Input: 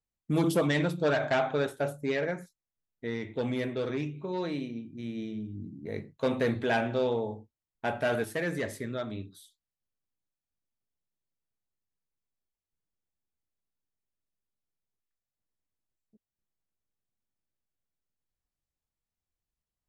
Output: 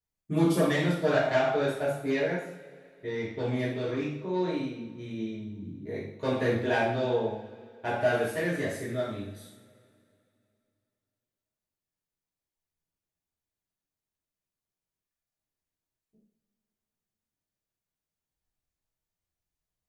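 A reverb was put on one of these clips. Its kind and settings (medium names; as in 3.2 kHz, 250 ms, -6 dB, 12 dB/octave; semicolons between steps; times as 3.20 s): two-slope reverb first 0.58 s, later 2.7 s, from -20 dB, DRR -8.5 dB; trim -7.5 dB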